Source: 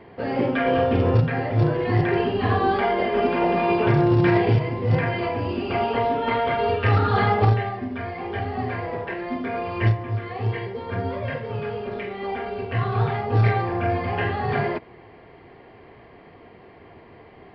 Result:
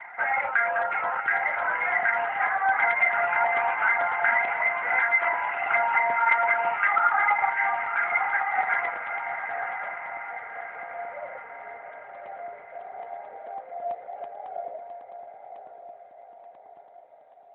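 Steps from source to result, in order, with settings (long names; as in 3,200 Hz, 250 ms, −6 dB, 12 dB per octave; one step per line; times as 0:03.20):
high-pass filter 970 Hz 24 dB per octave
reverb reduction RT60 0.58 s
elliptic low-pass filter 2,200 Hz, stop band 40 dB, from 0:08.89 630 Hz
downward compressor 3 to 1, threshold −38 dBFS, peak gain reduction 11 dB
feedback delay with all-pass diffusion 1,071 ms, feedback 51%, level −7 dB
convolution reverb RT60 3.5 s, pre-delay 4 ms, DRR 23 dB
regular buffer underruns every 0.11 s, samples 64, zero, from 0:00.82
level +7 dB
AMR narrowband 12.2 kbit/s 8,000 Hz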